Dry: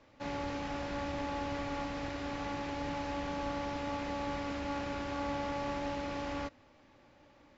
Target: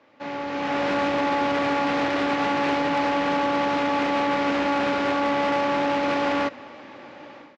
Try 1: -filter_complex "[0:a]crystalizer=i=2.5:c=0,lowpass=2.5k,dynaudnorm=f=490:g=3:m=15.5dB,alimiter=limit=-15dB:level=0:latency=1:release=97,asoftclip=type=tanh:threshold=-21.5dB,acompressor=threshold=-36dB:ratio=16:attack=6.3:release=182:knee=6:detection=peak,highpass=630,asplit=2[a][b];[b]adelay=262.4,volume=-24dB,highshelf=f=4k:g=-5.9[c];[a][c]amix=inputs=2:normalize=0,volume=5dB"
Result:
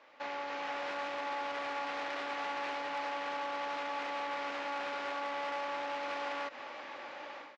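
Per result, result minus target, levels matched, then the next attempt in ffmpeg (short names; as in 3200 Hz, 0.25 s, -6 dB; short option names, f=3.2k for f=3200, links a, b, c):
compressor: peak gain reduction +12.5 dB; 250 Hz band -10.0 dB
-filter_complex "[0:a]crystalizer=i=2.5:c=0,lowpass=2.5k,dynaudnorm=f=490:g=3:m=15.5dB,alimiter=limit=-15dB:level=0:latency=1:release=97,asoftclip=type=tanh:threshold=-21.5dB,highpass=630,asplit=2[a][b];[b]adelay=262.4,volume=-24dB,highshelf=f=4k:g=-5.9[c];[a][c]amix=inputs=2:normalize=0,volume=5dB"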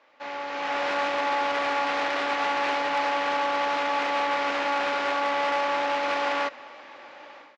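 250 Hz band -10.0 dB
-filter_complex "[0:a]crystalizer=i=2.5:c=0,lowpass=2.5k,dynaudnorm=f=490:g=3:m=15.5dB,alimiter=limit=-15dB:level=0:latency=1:release=97,asoftclip=type=tanh:threshold=-21.5dB,highpass=220,asplit=2[a][b];[b]adelay=262.4,volume=-24dB,highshelf=f=4k:g=-5.9[c];[a][c]amix=inputs=2:normalize=0,volume=5dB"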